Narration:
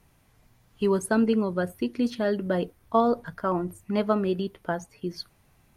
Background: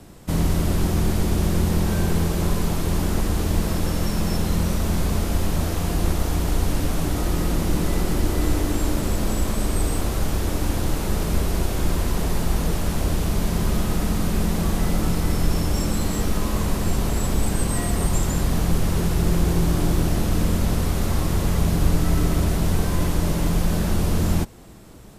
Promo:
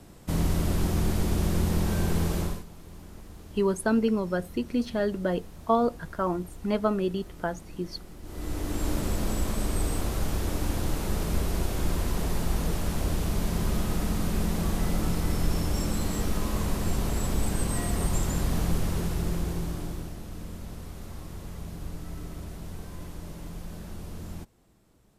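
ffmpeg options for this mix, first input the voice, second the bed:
-filter_complex "[0:a]adelay=2750,volume=-1.5dB[a];[1:a]volume=13dB,afade=t=out:st=2.37:d=0.27:silence=0.11885,afade=t=in:st=8.22:d=0.7:silence=0.125893,afade=t=out:st=18.64:d=1.52:silence=0.223872[b];[a][b]amix=inputs=2:normalize=0"

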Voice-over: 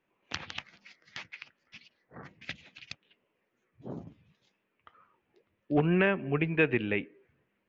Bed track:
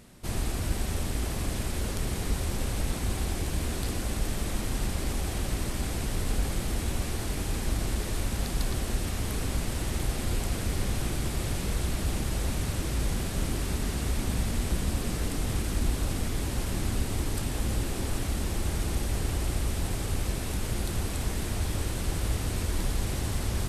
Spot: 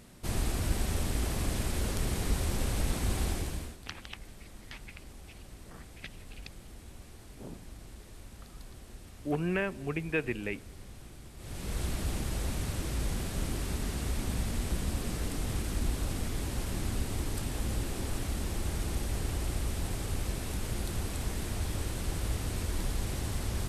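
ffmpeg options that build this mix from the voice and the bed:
-filter_complex "[0:a]adelay=3550,volume=-5.5dB[a];[1:a]volume=14dB,afade=t=out:st=3.27:d=0.5:silence=0.125893,afade=t=in:st=11.37:d=0.45:silence=0.177828[b];[a][b]amix=inputs=2:normalize=0"

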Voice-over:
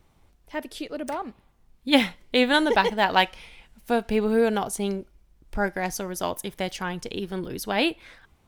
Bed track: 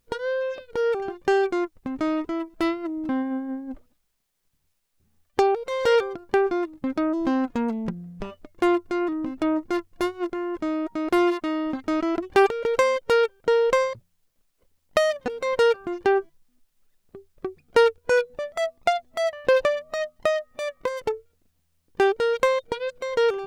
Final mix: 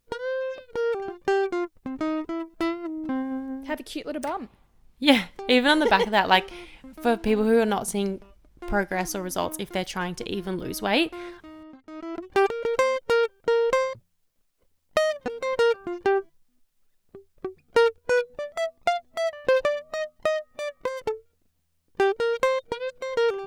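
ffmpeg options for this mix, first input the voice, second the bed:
-filter_complex "[0:a]adelay=3150,volume=1dB[a];[1:a]volume=13.5dB,afade=t=out:st=3.58:d=0.33:silence=0.16788,afade=t=in:st=11.91:d=0.61:silence=0.158489[b];[a][b]amix=inputs=2:normalize=0"

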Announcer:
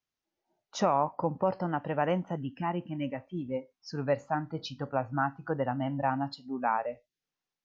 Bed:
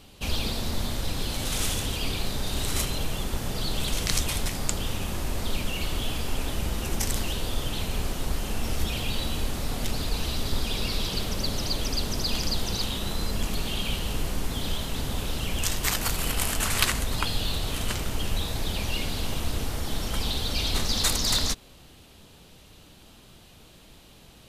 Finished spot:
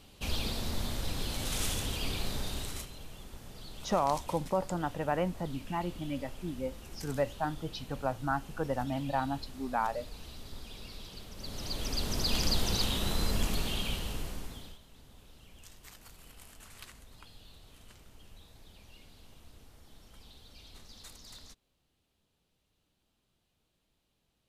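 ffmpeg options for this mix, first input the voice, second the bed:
-filter_complex "[0:a]adelay=3100,volume=-2.5dB[a];[1:a]volume=11dB,afade=t=out:st=2.38:d=0.5:silence=0.237137,afade=t=in:st=11.34:d=1.12:silence=0.149624,afade=t=out:st=13.33:d=1.46:silence=0.0562341[b];[a][b]amix=inputs=2:normalize=0"

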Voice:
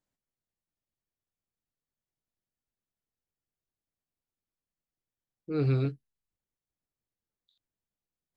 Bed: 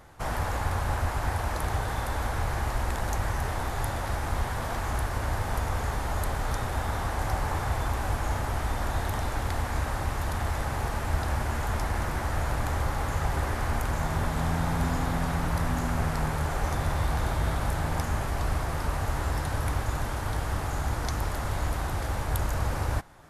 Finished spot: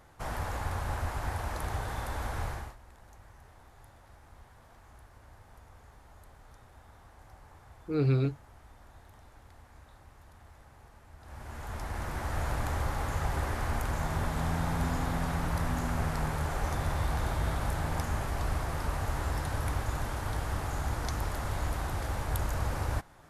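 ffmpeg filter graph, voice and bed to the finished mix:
-filter_complex "[0:a]adelay=2400,volume=0.5dB[a];[1:a]volume=16.5dB,afade=t=out:st=2.45:d=0.31:silence=0.1,afade=t=in:st=11.19:d=1.26:silence=0.0794328[b];[a][b]amix=inputs=2:normalize=0"

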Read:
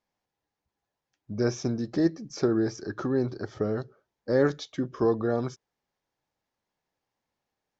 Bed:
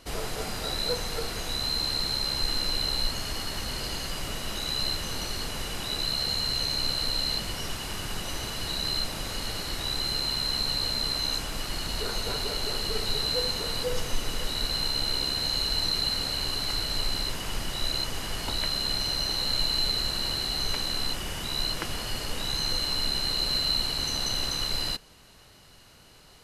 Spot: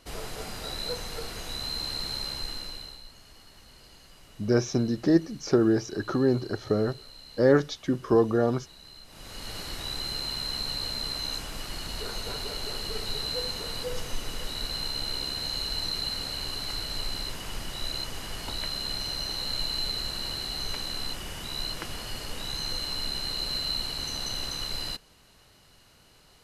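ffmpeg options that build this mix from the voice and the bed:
-filter_complex "[0:a]adelay=3100,volume=3dB[a];[1:a]volume=11.5dB,afade=t=out:st=2.21:d=0.8:silence=0.16788,afade=t=in:st=9.06:d=0.53:silence=0.158489[b];[a][b]amix=inputs=2:normalize=0"

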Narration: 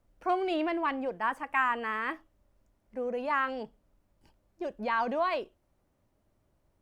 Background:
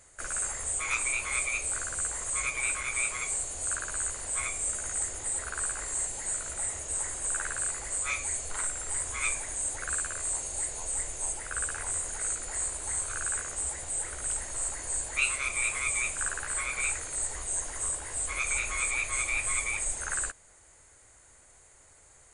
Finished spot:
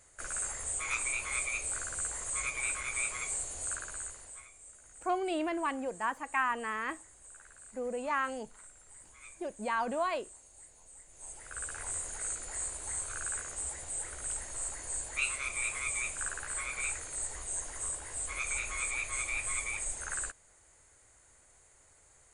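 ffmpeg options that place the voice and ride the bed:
-filter_complex "[0:a]adelay=4800,volume=-3dB[a];[1:a]volume=13dB,afade=t=out:st=3.58:d=0.88:silence=0.125893,afade=t=in:st=11.08:d=0.79:silence=0.141254[b];[a][b]amix=inputs=2:normalize=0"

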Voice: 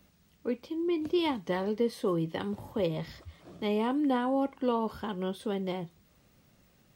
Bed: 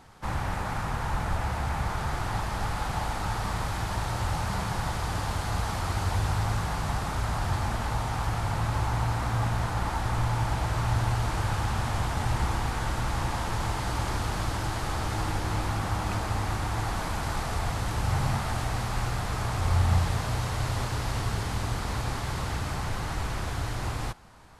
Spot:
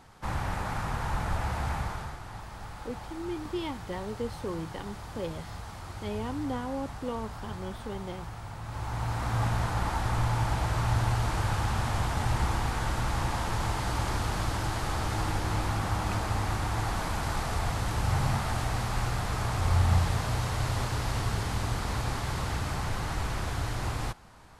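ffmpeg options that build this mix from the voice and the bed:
-filter_complex "[0:a]adelay=2400,volume=-6dB[a];[1:a]volume=10dB,afade=t=out:st=1.71:d=0.47:silence=0.298538,afade=t=in:st=8.63:d=0.81:silence=0.266073[b];[a][b]amix=inputs=2:normalize=0"

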